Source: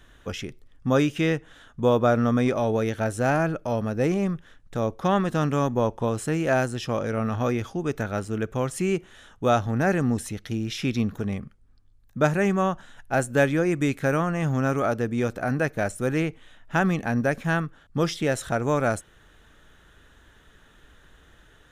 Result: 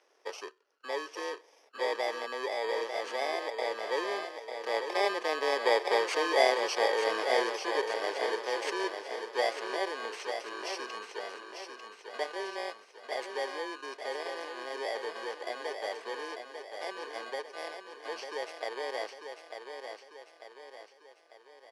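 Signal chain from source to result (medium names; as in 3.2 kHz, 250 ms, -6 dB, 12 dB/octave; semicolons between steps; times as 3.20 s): bit-reversed sample order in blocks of 32 samples; Doppler pass-by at 6.54 s, 7 m/s, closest 8.8 m; Bessel low-pass 4.1 kHz, order 4; in parallel at -1.5 dB: compressor with a negative ratio -45 dBFS, ratio -1; on the sum: elliptic high-pass 410 Hz, stop band 70 dB; on a send: feedback delay 896 ms, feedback 48%, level -7 dB; on the sum: trim +3 dB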